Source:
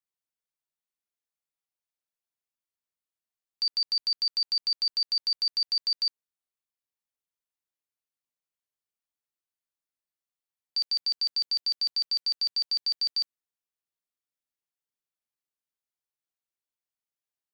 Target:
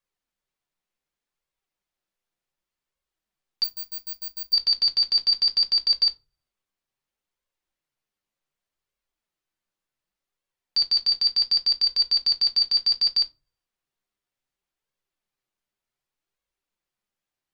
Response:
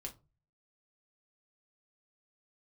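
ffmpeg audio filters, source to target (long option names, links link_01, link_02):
-filter_complex "[0:a]highshelf=frequency=6000:gain=-11,asettb=1/sr,asplit=3[link_01][link_02][link_03];[link_01]atrim=end=3.644[link_04];[link_02]atrim=start=3.64:end=4.53,asetpts=PTS-STARTPTS,afade=type=in:duration=0.004:curve=qsin,afade=type=out:start_time=0.886:duration=0.004:curve=qsin,aeval=exprs='0.0133*(abs(mod(val(0)/0.0133+3,4)-2)-1)':channel_layout=same[link_05];[link_03]atrim=start=4.526[link_06];[link_04][link_05]acrossfade=duration=0.004:curve1=hsin:curve2=qsin[link_07];[link_07][link_06]acrossfade=duration=0.004:curve1=qsin:curve2=hsin,flanger=delay=1.8:depth=8.3:regen=44:speed=0.67:shape=sinusoidal,asplit=2[link_08][link_09];[1:a]atrim=start_sample=2205,lowshelf=frequency=73:gain=10.5[link_10];[link_09][link_10]afir=irnorm=-1:irlink=0,volume=3dB[link_11];[link_08][link_11]amix=inputs=2:normalize=0,volume=8dB"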